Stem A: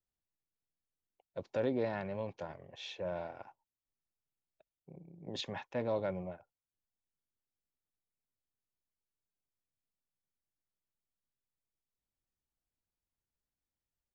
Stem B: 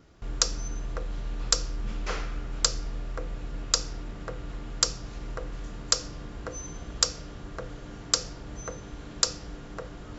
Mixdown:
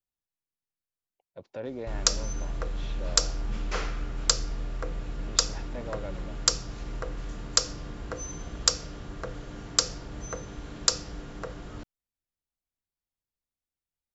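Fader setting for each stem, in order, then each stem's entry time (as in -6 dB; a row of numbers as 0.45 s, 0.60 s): -3.5 dB, +1.0 dB; 0.00 s, 1.65 s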